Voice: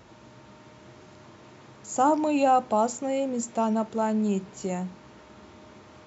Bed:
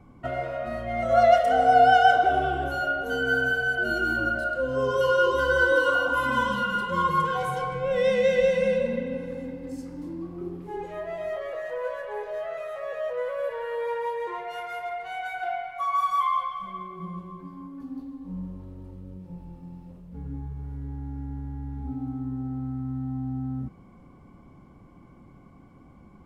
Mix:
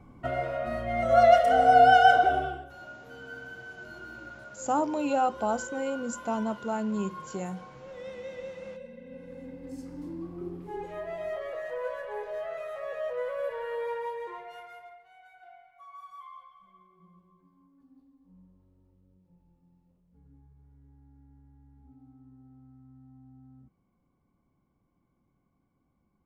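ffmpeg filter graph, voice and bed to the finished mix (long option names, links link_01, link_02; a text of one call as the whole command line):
ffmpeg -i stem1.wav -i stem2.wav -filter_complex "[0:a]adelay=2700,volume=-5dB[link_01];[1:a]volume=15.5dB,afade=type=out:start_time=2.2:duration=0.46:silence=0.11885,afade=type=in:start_time=8.98:duration=0.99:silence=0.158489,afade=type=out:start_time=13.74:duration=1.3:silence=0.105925[link_02];[link_01][link_02]amix=inputs=2:normalize=0" out.wav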